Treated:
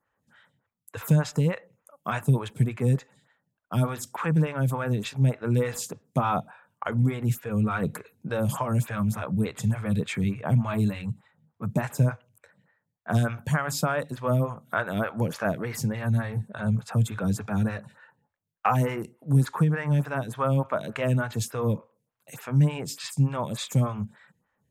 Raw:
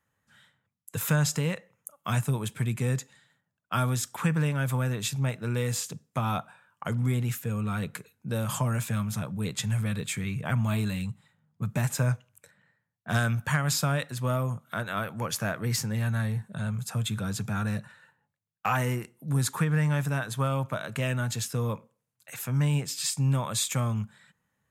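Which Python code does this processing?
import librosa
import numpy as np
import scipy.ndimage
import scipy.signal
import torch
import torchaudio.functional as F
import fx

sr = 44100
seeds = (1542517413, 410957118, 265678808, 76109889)

p1 = fx.high_shelf(x, sr, hz=2400.0, db=-8.5)
p2 = fx.rider(p1, sr, range_db=10, speed_s=0.5)
p3 = p1 + F.gain(torch.from_numpy(p2), 2.5).numpy()
y = fx.stagger_phaser(p3, sr, hz=3.4)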